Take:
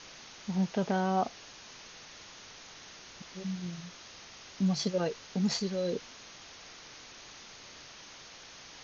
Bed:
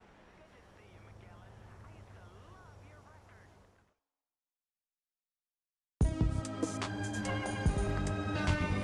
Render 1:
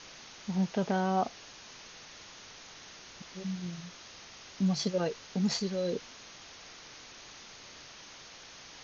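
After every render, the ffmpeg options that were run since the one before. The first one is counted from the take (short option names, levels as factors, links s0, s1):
-af anull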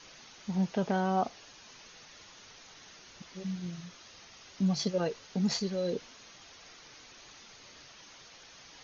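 -af "afftdn=nr=6:nf=-51"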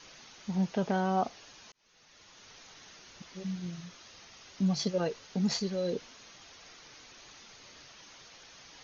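-filter_complex "[0:a]asplit=2[s0][s1];[s0]atrim=end=1.72,asetpts=PTS-STARTPTS,afade=t=out:st=1.716:d=0.004:c=hsin[s2];[s1]atrim=start=1.72,asetpts=PTS-STARTPTS,afade=t=in:d=0.84[s3];[s2][s3]concat=n=2:v=0:a=1"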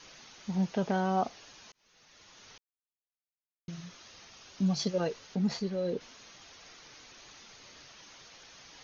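-filter_complex "[0:a]asettb=1/sr,asplit=3[s0][s1][s2];[s0]atrim=end=4.304[s3];[s1]atrim=start=4.3:end=4.82,asetpts=PTS-STARTPTS,afade=t=in:d=0.004:c=qsin,afade=t=out:st=0.516:d=0.004:c=qsin,bandreject=f=2000:w=12[s4];[s2]atrim=start=4.816[s5];[s3][s4]acrossfade=d=0.004:c1=hsin:c2=qsin[s6];[s6][s5]acrossfade=d=0.004:c1=qsin:c2=hsin,asettb=1/sr,asplit=3[s7][s8][s9];[s7]atrim=end=5.354[s10];[s8]atrim=start=5.35:end=6.01,asetpts=PTS-STARTPTS,afade=t=in:d=0.004:c=qsin,afade=t=out:st=0.656:d=0.004:c=qsin,lowpass=f=2400:p=1[s11];[s9]atrim=start=6.006[s12];[s10][s11]acrossfade=d=0.004:c1=hsin:c2=qsin[s13];[s13][s12]acrossfade=d=0.004:c1=qsin:c2=hsin,asplit=3[s14][s15][s16];[s14]atrim=end=2.58,asetpts=PTS-STARTPTS,afade=t=out:st=2.576:d=0.004:c=hsin[s17];[s15]atrim=start=2.58:end=3.68,asetpts=PTS-STARTPTS,volume=0[s18];[s16]atrim=start=3.68,asetpts=PTS-STARTPTS,afade=t=in:d=0.004:c=hsin[s19];[s17][s18][s19]concat=n=3:v=0:a=1"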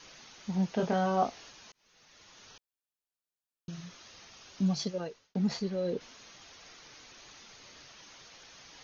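-filter_complex "[0:a]asettb=1/sr,asplit=3[s0][s1][s2];[s0]atrim=end=0.764[s3];[s1]atrim=start=0.76:end=1.5,asetpts=PTS-STARTPTS,afade=t=in:d=0.004:c=qsin,afade=t=out:st=0.736:d=0.004:c=qsin,asplit=2[s4][s5];[s5]adelay=23,volume=0.708[s6];[s4][s6]amix=inputs=2:normalize=0,atrim=end_sample=32634[s7];[s2]atrim=start=1.496[s8];[s3][s7]acrossfade=d=0.004:c1=hsin:c2=qsin[s9];[s9][s8]acrossfade=d=0.004:c1=qsin:c2=hsin,asettb=1/sr,asplit=3[s10][s11][s12];[s10]atrim=end=2.474[s13];[s11]atrim=start=2.47:end=3.74,asetpts=PTS-STARTPTS,afade=t=in:d=0.004:c=qsin,afade=t=out:st=1.266:d=0.004:c=qsin,asuperstop=centerf=2100:order=4:qfactor=5.3[s14];[s12]atrim=start=3.736[s15];[s13][s14]acrossfade=d=0.004:c1=hsin:c2=qsin[s16];[s16][s15]acrossfade=d=0.004:c1=qsin:c2=hsin,asplit=2[s17][s18];[s17]atrim=end=5.35,asetpts=PTS-STARTPTS,afade=t=out:st=4.67:d=0.68[s19];[s18]atrim=start=5.35,asetpts=PTS-STARTPTS,afade=t=in:d=0.004:c=hsin[s20];[s19][s20]concat=n=2:v=0:a=1"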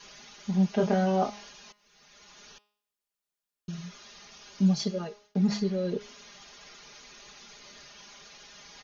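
-af "aecho=1:1:4.9:0.99,bandreject=f=207.2:t=h:w=4,bandreject=f=414.4:t=h:w=4,bandreject=f=621.6:t=h:w=4,bandreject=f=828.8:t=h:w=4,bandreject=f=1036:t=h:w=4,bandreject=f=1243.2:t=h:w=4,bandreject=f=1450.4:t=h:w=4,bandreject=f=1657.6:t=h:w=4,bandreject=f=1864.8:t=h:w=4,bandreject=f=2072:t=h:w=4,bandreject=f=2279.2:t=h:w=4,bandreject=f=2486.4:t=h:w=4,bandreject=f=2693.6:t=h:w=4,bandreject=f=2900.8:t=h:w=4,bandreject=f=3108:t=h:w=4,bandreject=f=3315.2:t=h:w=4,bandreject=f=3522.4:t=h:w=4,bandreject=f=3729.6:t=h:w=4,bandreject=f=3936.8:t=h:w=4,bandreject=f=4144:t=h:w=4,bandreject=f=4351.2:t=h:w=4,bandreject=f=4558.4:t=h:w=4,bandreject=f=4765.6:t=h:w=4,bandreject=f=4972.8:t=h:w=4,bandreject=f=5180:t=h:w=4,bandreject=f=5387.2:t=h:w=4,bandreject=f=5594.4:t=h:w=4,bandreject=f=5801.6:t=h:w=4,bandreject=f=6008.8:t=h:w=4,bandreject=f=6216:t=h:w=4,bandreject=f=6423.2:t=h:w=4"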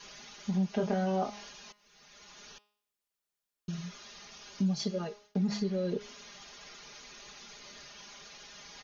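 -af "acompressor=threshold=0.0355:ratio=2.5"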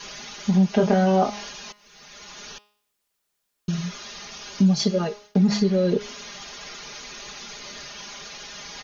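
-af "volume=3.76"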